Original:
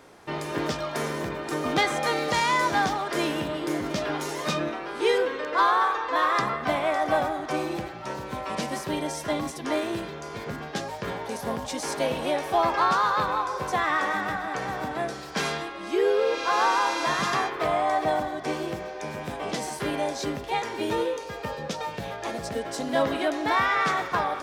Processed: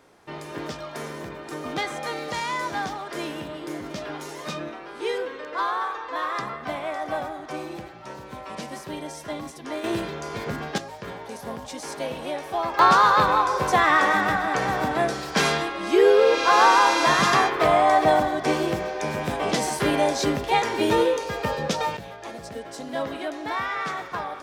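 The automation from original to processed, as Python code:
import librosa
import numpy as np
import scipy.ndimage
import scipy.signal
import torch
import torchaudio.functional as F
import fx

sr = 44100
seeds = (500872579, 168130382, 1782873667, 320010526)

y = fx.gain(x, sr, db=fx.steps((0.0, -5.0), (9.84, 4.0), (10.78, -4.0), (12.79, 6.5), (21.97, -5.0)))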